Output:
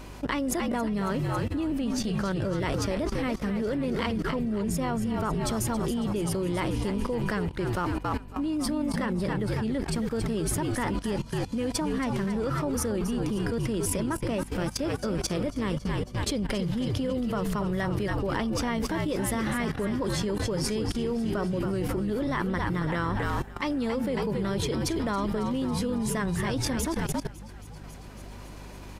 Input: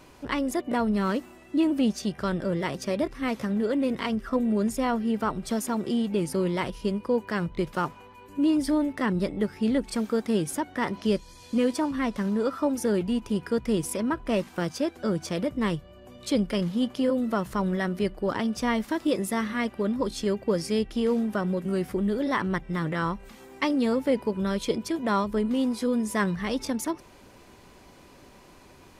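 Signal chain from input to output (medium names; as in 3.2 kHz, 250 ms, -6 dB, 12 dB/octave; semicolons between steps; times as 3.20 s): frequency-shifting echo 275 ms, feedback 62%, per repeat -57 Hz, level -8 dB; level held to a coarse grid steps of 18 dB; hum 50 Hz, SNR 16 dB; trim +8 dB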